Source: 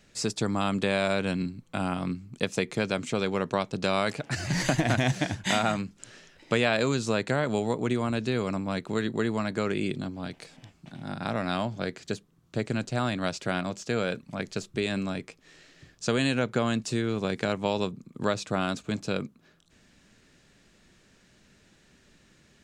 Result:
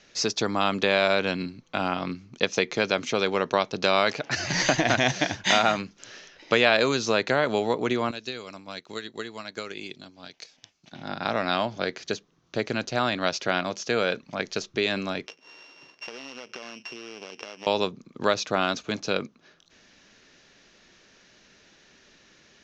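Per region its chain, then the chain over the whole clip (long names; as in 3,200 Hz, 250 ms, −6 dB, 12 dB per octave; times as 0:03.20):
0:08.11–0:10.93: first-order pre-emphasis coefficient 0.8 + transient designer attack +6 dB, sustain −4 dB
0:15.26–0:17.67: samples sorted by size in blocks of 16 samples + high-pass filter 230 Hz + downward compressor 16 to 1, threshold −39 dBFS
whole clip: elliptic low-pass filter 6,300 Hz, stop band 40 dB; bass and treble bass −11 dB, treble +3 dB; level +6 dB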